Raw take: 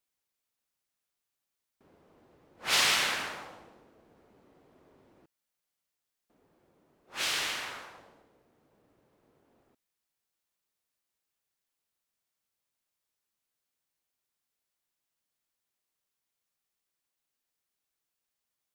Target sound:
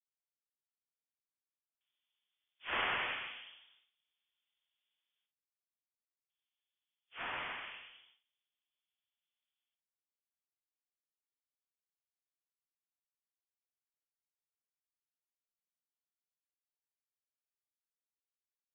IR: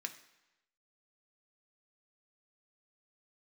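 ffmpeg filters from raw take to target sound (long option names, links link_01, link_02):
-filter_complex "[0:a]agate=range=-13dB:threshold=-58dB:ratio=16:detection=peak,highpass=frequency=610:width=0.5412,highpass=frequency=610:width=1.3066,asplit=2[link_01][link_02];[link_02]aecho=0:1:48|56:0.335|0.355[link_03];[link_01][link_03]amix=inputs=2:normalize=0,lowpass=frequency=3400:width_type=q:width=0.5098,lowpass=frequency=3400:width_type=q:width=0.6013,lowpass=frequency=3400:width_type=q:width=0.9,lowpass=frequency=3400:width_type=q:width=2.563,afreqshift=-4000,volume=-8dB"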